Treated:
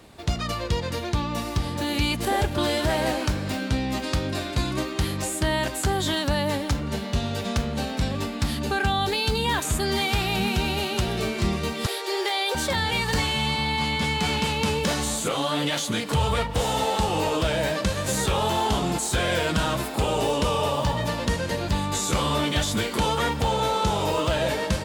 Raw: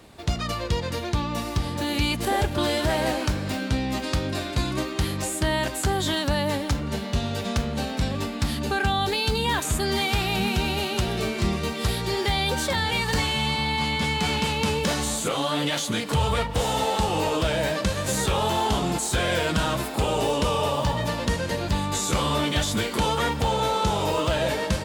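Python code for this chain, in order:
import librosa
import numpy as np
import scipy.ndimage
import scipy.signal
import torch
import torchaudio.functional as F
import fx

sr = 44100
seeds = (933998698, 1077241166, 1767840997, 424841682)

y = fx.steep_highpass(x, sr, hz=340.0, slope=72, at=(11.86, 12.55))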